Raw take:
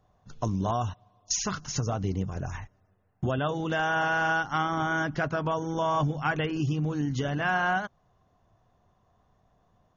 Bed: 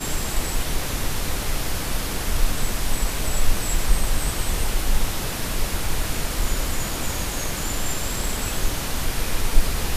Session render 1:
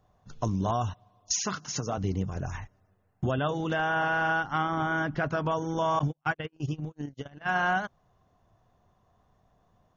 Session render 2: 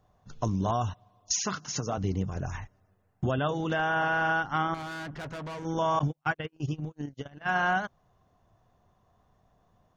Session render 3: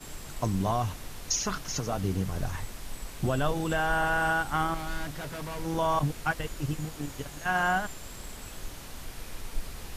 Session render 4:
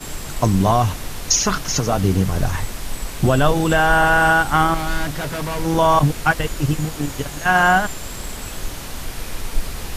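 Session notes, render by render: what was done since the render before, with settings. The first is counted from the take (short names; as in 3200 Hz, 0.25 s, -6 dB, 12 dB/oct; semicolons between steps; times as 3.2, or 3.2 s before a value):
1.32–1.98 HPF 170 Hz; 3.73–5.26 air absorption 140 m; 5.99–7.56 gate -27 dBFS, range -47 dB
4.74–5.65 tube stage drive 36 dB, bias 0.4
add bed -16.5 dB
gain +12 dB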